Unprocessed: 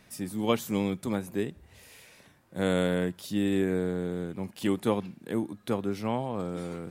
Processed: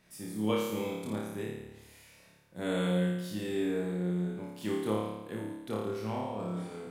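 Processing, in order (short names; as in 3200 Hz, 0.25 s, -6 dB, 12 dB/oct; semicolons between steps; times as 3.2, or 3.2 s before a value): flutter echo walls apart 4.8 m, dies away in 1 s; gain -9 dB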